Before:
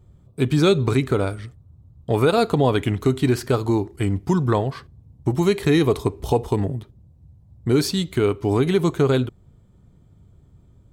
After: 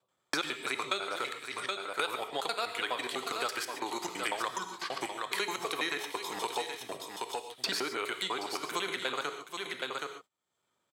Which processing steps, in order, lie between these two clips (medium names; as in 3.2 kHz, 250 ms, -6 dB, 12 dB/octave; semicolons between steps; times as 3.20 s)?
slices played last to first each 83 ms, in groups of 4; gated-style reverb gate 160 ms flat, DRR 8 dB; gate -35 dBFS, range -31 dB; in parallel at -4 dB: saturation -9.5 dBFS, distortion -21 dB; on the sum: high-pass 1.1 kHz 12 dB/octave; treble shelf 7.9 kHz -4.5 dB; delay 773 ms -12.5 dB; three bands compressed up and down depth 100%; trim -6.5 dB